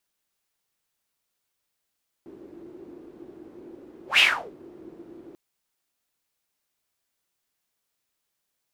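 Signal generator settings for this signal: whoosh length 3.09 s, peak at 1.93, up 0.13 s, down 0.36 s, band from 340 Hz, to 2800 Hz, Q 7.6, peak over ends 29 dB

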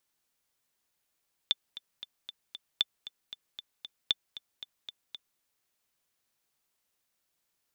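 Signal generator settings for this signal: metronome 231 bpm, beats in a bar 5, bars 3, 3530 Hz, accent 16 dB -11.5 dBFS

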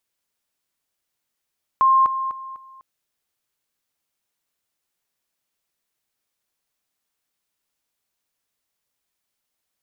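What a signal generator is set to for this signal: level ladder 1060 Hz -12 dBFS, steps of -10 dB, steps 4, 0.25 s 0.00 s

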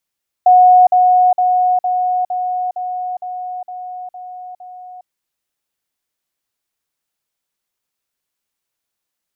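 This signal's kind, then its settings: level ladder 730 Hz -4.5 dBFS, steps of -3 dB, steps 10, 0.41 s 0.05 s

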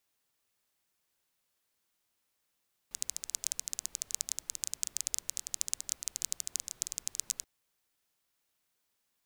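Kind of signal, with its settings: rain from filtered ticks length 4.53 s, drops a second 15, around 6800 Hz, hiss -23 dB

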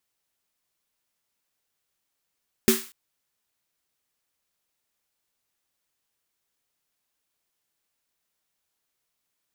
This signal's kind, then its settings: snare drum length 0.24 s, tones 230 Hz, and 380 Hz, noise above 1100 Hz, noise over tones -4.5 dB, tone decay 0.22 s, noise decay 0.41 s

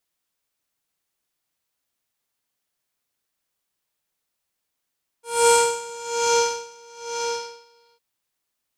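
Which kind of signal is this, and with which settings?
synth patch with tremolo A#5, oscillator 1 triangle, oscillator 2 square, interval -12 st, oscillator 2 level -1.5 dB, noise -8.5 dB, filter lowpass, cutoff 4600 Hz, Q 5, filter envelope 1 oct, filter decay 1.22 s, attack 0.38 s, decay 1.04 s, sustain -13 dB, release 0.82 s, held 1.94 s, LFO 1.1 Hz, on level 22.5 dB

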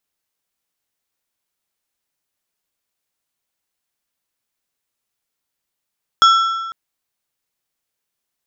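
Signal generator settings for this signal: metal hit plate, length 0.50 s, lowest mode 1340 Hz, modes 4, decay 1.41 s, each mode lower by 7 dB, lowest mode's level -6 dB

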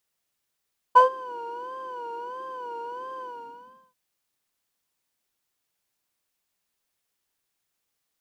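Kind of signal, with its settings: synth patch with vibrato B5, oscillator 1 triangle, interval +7 st, oscillator 2 level -9 dB, sub -19.5 dB, noise -16 dB, filter bandpass, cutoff 180 Hz, Q 5.9, filter envelope 2 oct, filter decay 0.20 s, filter sustain 50%, attack 20 ms, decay 0.12 s, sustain -17.5 dB, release 0.73 s, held 2.26 s, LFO 1.5 Hz, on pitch 99 cents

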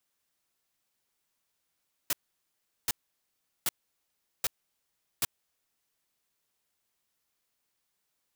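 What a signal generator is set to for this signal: noise bursts white, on 0.03 s, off 0.75 s, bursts 5, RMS -27.5 dBFS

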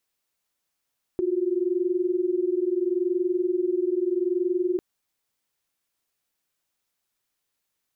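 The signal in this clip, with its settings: chord F4/F#4 sine, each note -24.5 dBFS 3.60 s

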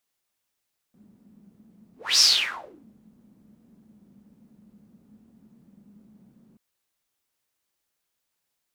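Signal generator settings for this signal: whoosh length 5.63 s, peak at 1.25, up 0.26 s, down 0.73 s, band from 210 Hz, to 5400 Hz, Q 8.3, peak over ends 39 dB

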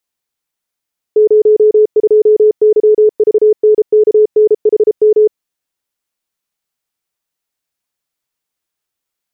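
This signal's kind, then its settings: Morse "02YVNKNHM" 33 wpm 427 Hz -4 dBFS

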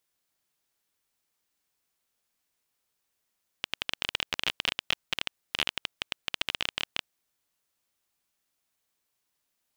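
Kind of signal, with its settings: random clicks 19/s -9.5 dBFS 3.41 s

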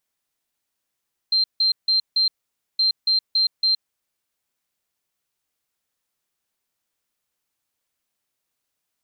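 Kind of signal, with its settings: beep pattern sine 4150 Hz, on 0.12 s, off 0.16 s, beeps 4, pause 0.51 s, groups 2, -15.5 dBFS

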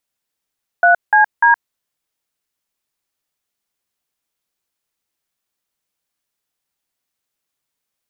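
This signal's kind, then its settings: DTMF "3CD", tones 0.118 s, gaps 0.179 s, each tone -10 dBFS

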